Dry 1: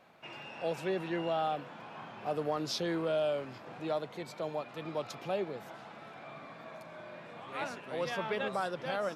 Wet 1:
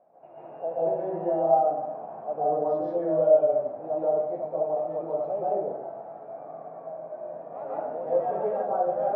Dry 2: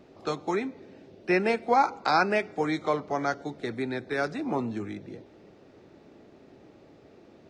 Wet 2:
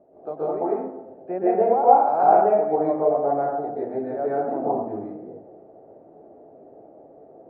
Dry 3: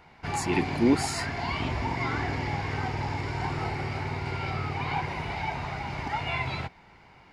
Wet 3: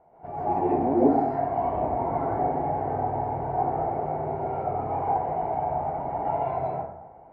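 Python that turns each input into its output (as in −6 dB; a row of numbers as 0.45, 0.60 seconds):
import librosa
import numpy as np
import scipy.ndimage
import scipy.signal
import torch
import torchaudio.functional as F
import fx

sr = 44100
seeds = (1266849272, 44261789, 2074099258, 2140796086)

y = fx.lowpass_res(x, sr, hz=660.0, q=4.9)
y = fx.low_shelf(y, sr, hz=180.0, db=-8.0)
y = fx.rev_plate(y, sr, seeds[0], rt60_s=0.82, hf_ratio=0.45, predelay_ms=115, drr_db=-8.0)
y = y * librosa.db_to_amplitude(-7.0)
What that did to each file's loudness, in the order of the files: +9.5, +6.5, +3.0 LU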